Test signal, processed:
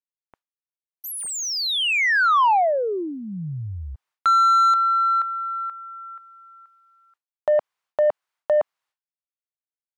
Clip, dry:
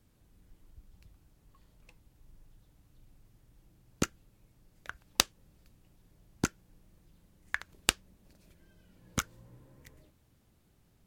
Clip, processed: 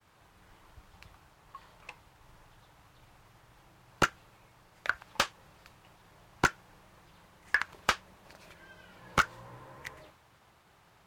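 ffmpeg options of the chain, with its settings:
ffmpeg -i in.wav -filter_complex "[0:a]equalizer=frequency=250:width_type=o:width=1:gain=-11,equalizer=frequency=500:width_type=o:width=1:gain=-4,equalizer=frequency=1000:width_type=o:width=1:gain=4,asplit=2[link_01][link_02];[link_02]highpass=frequency=720:poles=1,volume=33dB,asoftclip=type=tanh:threshold=-0.5dB[link_03];[link_01][link_03]amix=inputs=2:normalize=0,lowpass=frequency=1500:poles=1,volume=-6dB,agate=range=-33dB:threshold=-51dB:ratio=3:detection=peak,volume=-6dB" out.wav

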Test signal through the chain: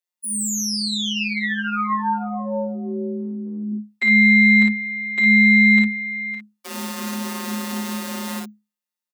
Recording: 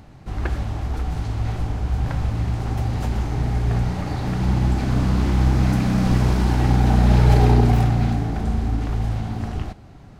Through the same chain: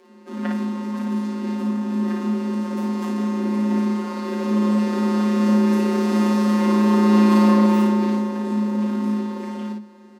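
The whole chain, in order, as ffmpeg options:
ffmpeg -i in.wav -filter_complex "[0:a]aeval=exprs='0.708*(cos(1*acos(clip(val(0)/0.708,-1,1)))-cos(1*PI/2))+0.0631*(cos(8*acos(clip(val(0)/0.708,-1,1)))-cos(8*PI/2))':channel_layout=same,afftfilt=real='hypot(re,im)*cos(PI*b)':imag='0':win_size=1024:overlap=0.75,asplit=2[link_01][link_02];[link_02]aecho=0:1:22|36|55:0.266|0.398|0.668[link_03];[link_01][link_03]amix=inputs=2:normalize=0,adynamicequalizer=threshold=0.0112:dfrequency=900:dqfactor=2.2:tfrequency=900:tqfactor=2.2:attack=5:release=100:ratio=0.375:range=1.5:mode=boostabove:tftype=bell,afreqshift=210,volume=-1.5dB" out.wav

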